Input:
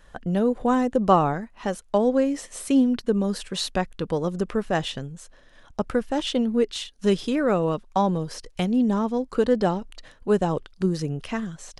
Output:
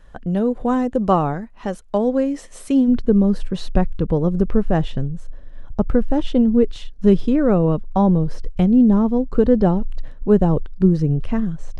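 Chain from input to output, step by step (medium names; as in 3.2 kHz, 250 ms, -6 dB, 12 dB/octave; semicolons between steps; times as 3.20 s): tilt EQ -1.5 dB/octave, from 2.87 s -4 dB/octave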